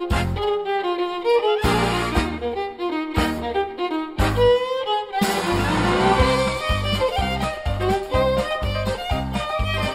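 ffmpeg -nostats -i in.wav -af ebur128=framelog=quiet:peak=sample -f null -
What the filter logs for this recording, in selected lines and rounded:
Integrated loudness:
  I:         -21.6 LUFS
  Threshold: -31.6 LUFS
Loudness range:
  LRA:         2.5 LU
  Threshold: -41.3 LUFS
  LRA low:   -22.5 LUFS
  LRA high:  -20.0 LUFS
Sample peak:
  Peak:       -5.8 dBFS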